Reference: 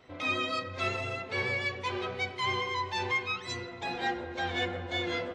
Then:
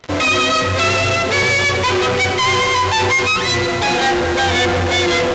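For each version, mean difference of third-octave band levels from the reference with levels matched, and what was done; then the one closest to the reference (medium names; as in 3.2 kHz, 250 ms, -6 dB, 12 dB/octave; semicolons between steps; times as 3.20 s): 4.5 dB: in parallel at -9 dB: fuzz box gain 52 dB, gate -52 dBFS; on the sum: trim +5.5 dB; µ-law 128 kbps 16 kHz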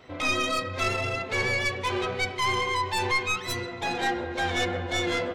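2.5 dB: tracing distortion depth 0.066 ms; in parallel at +1 dB: peak limiter -26.5 dBFS, peak gain reduction 7 dB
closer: second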